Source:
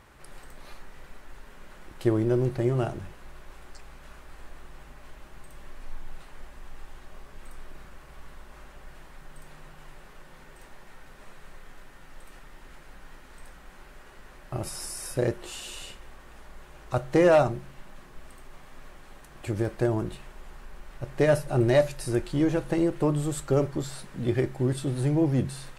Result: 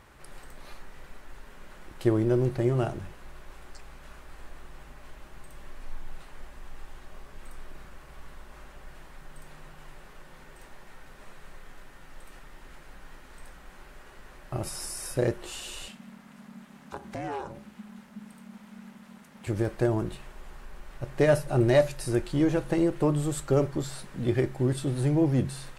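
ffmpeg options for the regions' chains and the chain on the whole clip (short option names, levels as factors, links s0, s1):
-filter_complex "[0:a]asettb=1/sr,asplit=3[s0][s1][s2];[s0]atrim=end=15.884[s3];[s1]atrim=start=15.88:end=19.47,asetpts=PTS-STARTPTS,afade=t=in:d=0.004:c=qsin,afade=t=out:st=3.586:d=0.004:c=qsin,equalizer=f=150:w=0.79:g=-11,acompressor=threshold=0.02:ratio=2.5:attack=3.2:release=140:knee=1:detection=peak,aeval=exprs='val(0)*sin(2*PI*210*n/s)':c=same[s4];[s2]atrim=start=19.466[s5];[s3][s4]acrossfade=d=0.004:c1=hsin:c2=qsin[s6];[s6][s5]acrossfade=d=0.004:c1=qsin:c2=hsin"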